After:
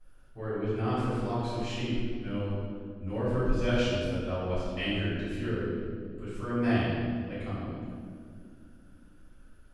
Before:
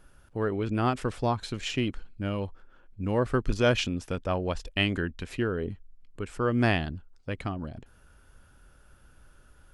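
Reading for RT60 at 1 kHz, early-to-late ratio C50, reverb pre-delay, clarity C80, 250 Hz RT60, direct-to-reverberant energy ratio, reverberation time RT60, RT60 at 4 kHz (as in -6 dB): 1.7 s, -2.5 dB, 3 ms, 0.0 dB, 3.8 s, -14.5 dB, 2.1 s, 1.4 s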